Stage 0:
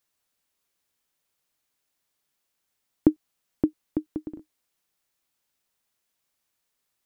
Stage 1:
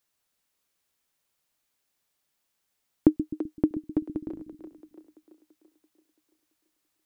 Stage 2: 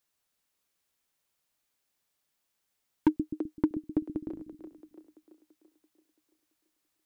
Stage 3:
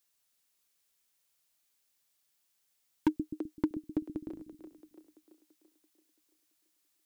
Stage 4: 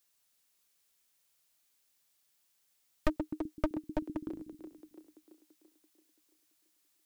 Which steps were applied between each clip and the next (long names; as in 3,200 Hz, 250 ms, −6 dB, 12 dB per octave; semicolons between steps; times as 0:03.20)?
echo with a time of its own for lows and highs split 320 Hz, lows 128 ms, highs 336 ms, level −9.5 dB
gain into a clipping stage and back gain 13.5 dB; level −2 dB
high-shelf EQ 2,400 Hz +9 dB; level −4 dB
wavefolder on the positive side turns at −31 dBFS; level +2 dB